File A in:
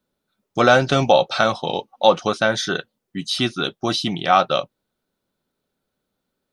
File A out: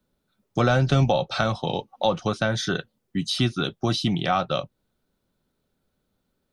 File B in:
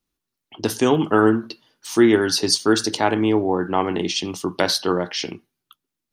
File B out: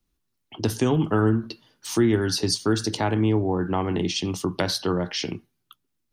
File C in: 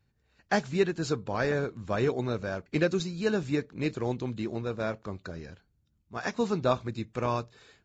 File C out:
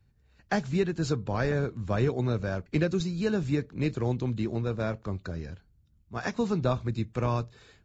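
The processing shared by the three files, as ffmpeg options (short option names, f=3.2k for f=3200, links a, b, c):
-filter_complex "[0:a]lowshelf=f=150:g=11,acrossover=split=160[a][b];[b]acompressor=threshold=-26dB:ratio=2[c];[a][c]amix=inputs=2:normalize=0"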